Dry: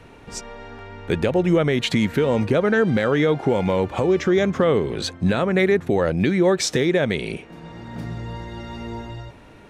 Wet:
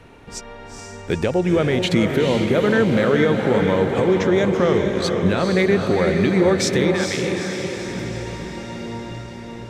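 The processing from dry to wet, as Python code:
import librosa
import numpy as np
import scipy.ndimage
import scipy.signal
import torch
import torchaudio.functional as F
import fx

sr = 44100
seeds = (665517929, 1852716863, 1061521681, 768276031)

y = fx.ellip_highpass(x, sr, hz=790.0, order=4, stop_db=40, at=(6.94, 7.77))
y = fx.echo_diffused(y, sr, ms=456, feedback_pct=60, wet_db=-4.5)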